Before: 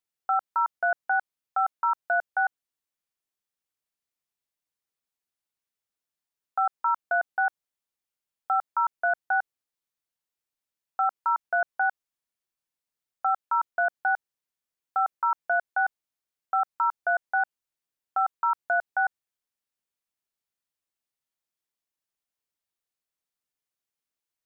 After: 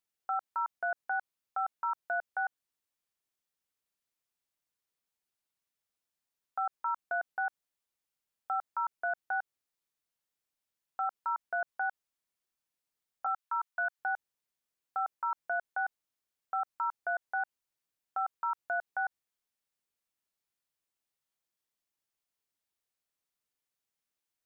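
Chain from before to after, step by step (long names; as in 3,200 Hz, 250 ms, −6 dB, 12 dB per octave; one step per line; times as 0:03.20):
0:09.28–0:11.07: downward compressor, threshold −25 dBFS, peak gain reduction 5 dB
0:13.26–0:13.99: high-pass filter 830 Hz 24 dB per octave
brickwall limiter −25 dBFS, peak gain reduction 8.5 dB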